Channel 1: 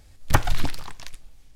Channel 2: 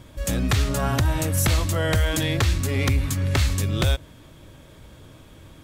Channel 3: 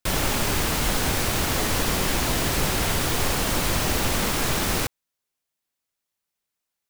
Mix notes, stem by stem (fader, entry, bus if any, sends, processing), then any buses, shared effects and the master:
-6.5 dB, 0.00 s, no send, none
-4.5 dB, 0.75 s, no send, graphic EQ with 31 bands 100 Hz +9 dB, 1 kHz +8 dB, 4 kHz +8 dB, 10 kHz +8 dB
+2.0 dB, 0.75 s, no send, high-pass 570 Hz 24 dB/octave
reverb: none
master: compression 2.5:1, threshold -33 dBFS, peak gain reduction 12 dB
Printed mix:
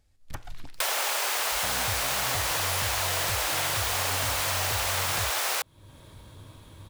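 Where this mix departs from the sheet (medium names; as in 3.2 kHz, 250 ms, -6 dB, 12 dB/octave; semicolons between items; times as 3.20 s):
stem 1 -6.5 dB -> -15.5 dB; stem 2: entry 0.75 s -> 1.35 s; stem 3 +2.0 dB -> +13.0 dB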